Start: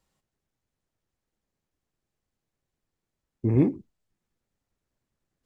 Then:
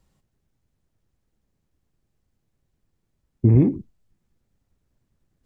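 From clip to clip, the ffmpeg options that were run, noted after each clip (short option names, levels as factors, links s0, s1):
-af "lowshelf=f=280:g=11.5,acompressor=threshold=0.2:ratio=6,volume=1.41"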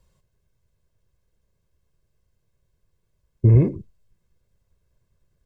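-af "aecho=1:1:1.9:0.65"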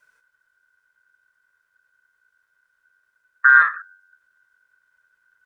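-af "afreqshift=-46,aeval=exprs='val(0)*sin(2*PI*1500*n/s)':c=same,volume=1.58"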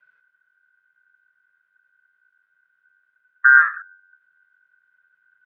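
-filter_complex "[0:a]acrossover=split=2600[s0][s1];[s1]acompressor=threshold=0.01:ratio=4:attack=1:release=60[s2];[s0][s2]amix=inputs=2:normalize=0,highpass=f=130:w=0.5412,highpass=f=130:w=1.3066,equalizer=f=150:t=q:w=4:g=3,equalizer=f=310:t=q:w=4:g=-10,equalizer=f=480:t=q:w=4:g=-6,equalizer=f=960:t=q:w=4:g=-7,equalizer=f=1500:t=q:w=4:g=5,lowpass=f=3300:w=0.5412,lowpass=f=3300:w=1.3066,volume=0.75"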